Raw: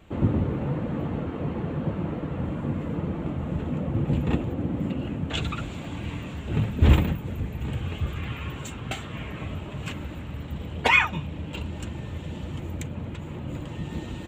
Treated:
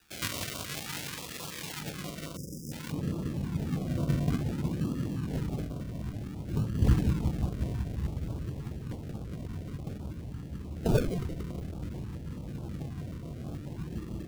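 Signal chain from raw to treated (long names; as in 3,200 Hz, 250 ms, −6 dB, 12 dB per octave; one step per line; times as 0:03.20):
flanger 1.5 Hz, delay 4.9 ms, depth 2.3 ms, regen −66%
feedback echo with a low-pass in the loop 181 ms, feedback 73%, low-pass 2,100 Hz, level −6.5 dB
sample-and-hold swept by an LFO 41×, swing 60% 0.55 Hz
low-shelf EQ 490 Hz −2.5 dB
0:02.36–0:02.72: time-frequency box erased 580–4,900 Hz
tilt shelving filter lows −9 dB, about 790 Hz, from 0:01.79 lows −3.5 dB, from 0:02.91 lows +5.5 dB
notch on a step sequencer 9.3 Hz 580–1,900 Hz
level −3.5 dB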